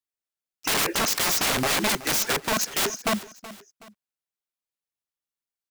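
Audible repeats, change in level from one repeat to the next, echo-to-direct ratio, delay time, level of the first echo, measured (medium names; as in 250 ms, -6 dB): 2, -8.0 dB, -16.5 dB, 374 ms, -17.0 dB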